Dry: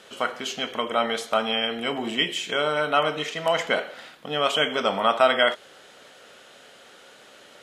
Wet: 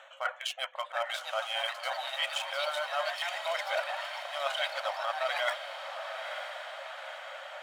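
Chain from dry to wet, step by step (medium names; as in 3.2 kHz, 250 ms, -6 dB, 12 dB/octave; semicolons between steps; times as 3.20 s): local Wiener filter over 9 samples; reverb removal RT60 0.62 s; reverse; compression 10:1, threshold -37 dBFS, peak gain reduction 24 dB; reverse; brick-wall FIR high-pass 520 Hz; ever faster or slower copies 755 ms, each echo +3 st, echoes 3, each echo -6 dB; on a send: echo that smears into a reverb 965 ms, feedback 56%, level -8 dB; on the sum: trim +7.5 dB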